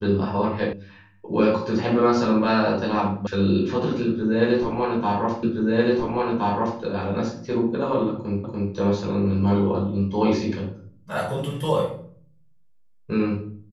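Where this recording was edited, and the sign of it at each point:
0:00.73: cut off before it has died away
0:03.27: cut off before it has died away
0:05.43: the same again, the last 1.37 s
0:08.44: the same again, the last 0.29 s

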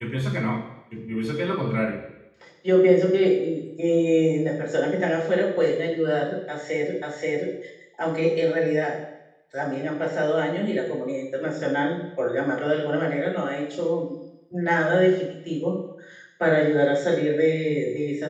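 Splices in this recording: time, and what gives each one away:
0:07.02: the same again, the last 0.53 s

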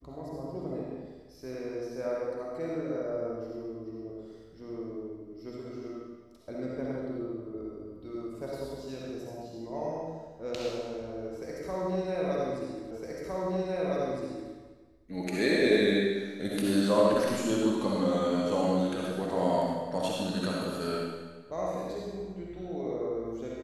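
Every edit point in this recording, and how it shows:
0:12.91: the same again, the last 1.61 s

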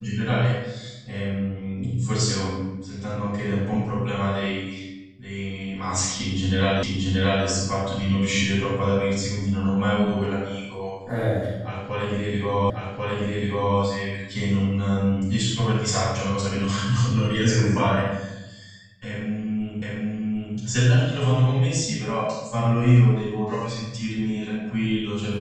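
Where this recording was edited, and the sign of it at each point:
0:06.83: the same again, the last 0.63 s
0:12.70: the same again, the last 1.09 s
0:19.82: the same again, the last 0.75 s

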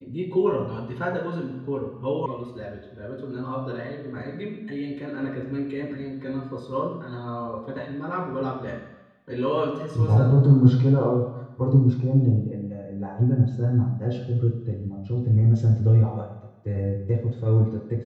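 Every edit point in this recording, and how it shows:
0:02.26: cut off before it has died away

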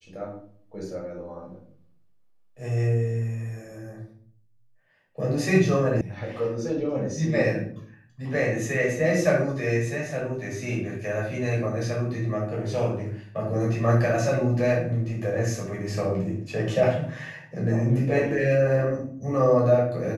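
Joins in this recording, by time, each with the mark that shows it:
0:06.01: cut off before it has died away

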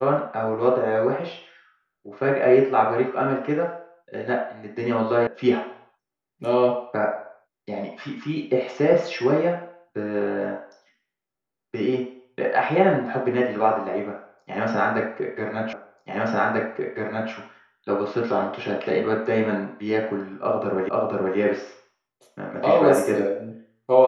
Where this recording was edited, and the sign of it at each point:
0:05.27: cut off before it has died away
0:15.73: the same again, the last 1.59 s
0:20.89: the same again, the last 0.48 s

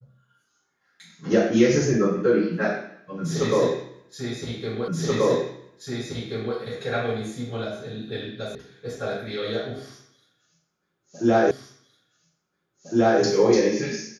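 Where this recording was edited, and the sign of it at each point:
0:04.88: the same again, the last 1.68 s
0:08.55: cut off before it has died away
0:11.51: the same again, the last 1.71 s

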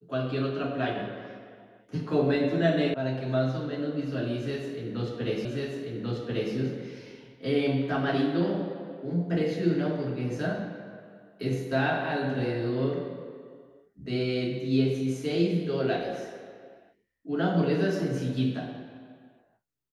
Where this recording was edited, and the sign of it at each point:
0:02.94: cut off before it has died away
0:05.45: the same again, the last 1.09 s

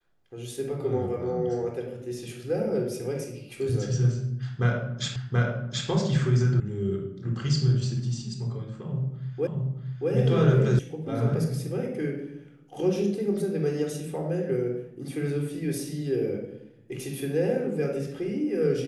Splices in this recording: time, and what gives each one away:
0:05.16: the same again, the last 0.73 s
0:06.60: cut off before it has died away
0:09.47: the same again, the last 0.63 s
0:10.79: cut off before it has died away

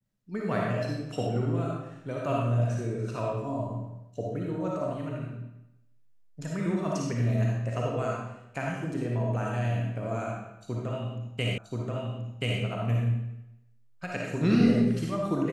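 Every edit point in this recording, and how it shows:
0:11.58: the same again, the last 1.03 s

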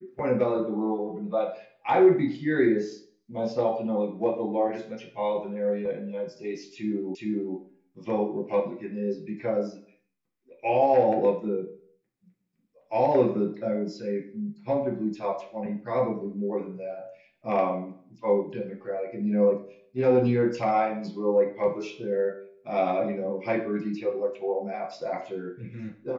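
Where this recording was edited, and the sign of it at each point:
0:07.15: the same again, the last 0.42 s

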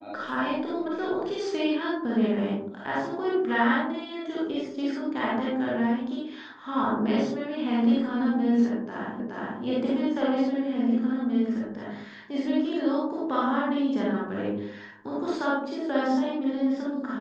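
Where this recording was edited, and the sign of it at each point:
0:09.20: the same again, the last 0.42 s

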